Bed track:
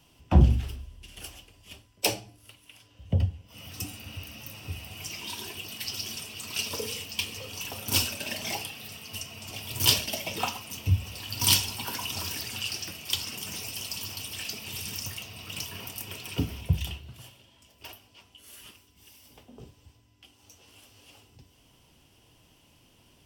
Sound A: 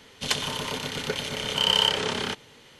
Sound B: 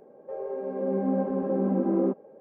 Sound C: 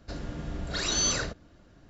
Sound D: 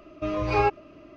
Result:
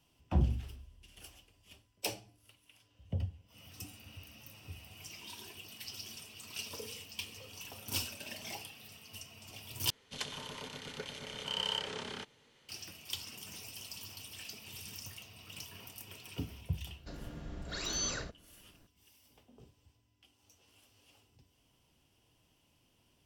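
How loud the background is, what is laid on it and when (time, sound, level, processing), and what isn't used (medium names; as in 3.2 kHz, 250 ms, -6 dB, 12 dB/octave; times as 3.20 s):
bed track -11 dB
9.90 s: replace with A -14 dB + low-pass 12 kHz
16.98 s: add C -9 dB
not used: B, D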